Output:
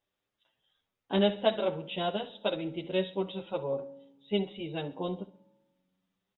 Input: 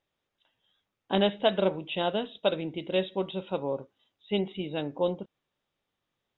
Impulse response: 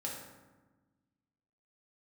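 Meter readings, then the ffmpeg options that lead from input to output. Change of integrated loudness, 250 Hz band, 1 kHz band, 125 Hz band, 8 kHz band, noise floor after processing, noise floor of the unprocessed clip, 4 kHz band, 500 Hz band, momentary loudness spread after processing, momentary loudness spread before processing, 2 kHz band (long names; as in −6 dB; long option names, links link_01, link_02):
−2.5 dB, −1.5 dB, −3.0 dB, −1.5 dB, can't be measured, below −85 dBFS, −84 dBFS, −2.5 dB, −2.5 dB, 9 LU, 8 LU, −3.0 dB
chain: -filter_complex "[0:a]aecho=1:1:65|130|195:0.141|0.0565|0.0226,asplit=2[link_01][link_02];[1:a]atrim=start_sample=2205,adelay=47[link_03];[link_02][link_03]afir=irnorm=-1:irlink=0,volume=-21.5dB[link_04];[link_01][link_04]amix=inputs=2:normalize=0,asplit=2[link_05][link_06];[link_06]adelay=8.1,afreqshift=0.99[link_07];[link_05][link_07]amix=inputs=2:normalize=1"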